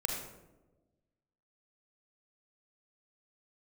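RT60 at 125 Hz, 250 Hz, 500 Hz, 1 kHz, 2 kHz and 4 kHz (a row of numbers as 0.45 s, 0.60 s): 1.6 s, 1.5 s, 1.3 s, 0.90 s, 0.70 s, 0.55 s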